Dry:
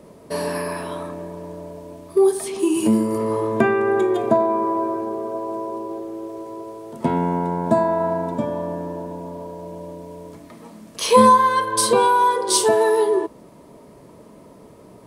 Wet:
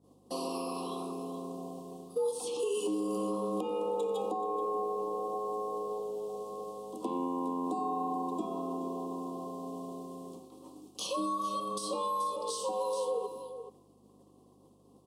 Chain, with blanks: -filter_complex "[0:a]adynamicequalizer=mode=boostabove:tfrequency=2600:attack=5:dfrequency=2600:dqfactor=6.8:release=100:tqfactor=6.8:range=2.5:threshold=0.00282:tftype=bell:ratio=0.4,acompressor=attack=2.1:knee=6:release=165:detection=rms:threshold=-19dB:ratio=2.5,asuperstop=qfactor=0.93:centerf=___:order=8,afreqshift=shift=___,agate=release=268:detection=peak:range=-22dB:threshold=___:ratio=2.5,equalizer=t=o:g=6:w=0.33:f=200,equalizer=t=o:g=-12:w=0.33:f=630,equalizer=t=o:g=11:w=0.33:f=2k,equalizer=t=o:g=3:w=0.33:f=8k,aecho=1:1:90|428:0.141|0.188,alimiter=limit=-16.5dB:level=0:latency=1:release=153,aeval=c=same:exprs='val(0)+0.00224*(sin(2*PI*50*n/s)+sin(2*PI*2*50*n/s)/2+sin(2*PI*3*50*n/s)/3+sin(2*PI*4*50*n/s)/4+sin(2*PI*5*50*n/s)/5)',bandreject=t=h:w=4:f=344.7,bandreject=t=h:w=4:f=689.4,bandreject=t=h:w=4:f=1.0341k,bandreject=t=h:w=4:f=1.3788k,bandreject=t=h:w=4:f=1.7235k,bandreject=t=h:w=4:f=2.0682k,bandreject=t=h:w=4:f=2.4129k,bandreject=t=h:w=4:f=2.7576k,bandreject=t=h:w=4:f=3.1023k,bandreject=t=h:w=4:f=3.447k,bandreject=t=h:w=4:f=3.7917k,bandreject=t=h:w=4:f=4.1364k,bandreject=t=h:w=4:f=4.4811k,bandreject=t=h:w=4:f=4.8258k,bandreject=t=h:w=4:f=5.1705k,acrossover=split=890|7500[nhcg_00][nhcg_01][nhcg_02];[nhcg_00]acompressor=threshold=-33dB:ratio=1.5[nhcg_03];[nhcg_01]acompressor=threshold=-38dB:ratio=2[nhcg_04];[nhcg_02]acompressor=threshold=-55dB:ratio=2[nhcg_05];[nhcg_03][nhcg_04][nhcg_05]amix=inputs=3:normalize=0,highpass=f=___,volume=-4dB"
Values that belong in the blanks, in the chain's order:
1700, 90, -34dB, 150